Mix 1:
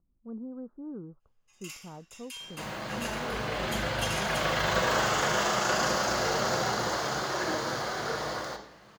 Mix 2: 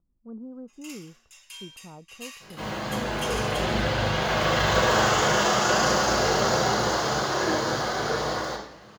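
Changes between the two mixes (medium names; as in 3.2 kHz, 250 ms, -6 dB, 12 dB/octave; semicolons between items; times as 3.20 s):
first sound: entry -0.80 s; second sound: send +8.5 dB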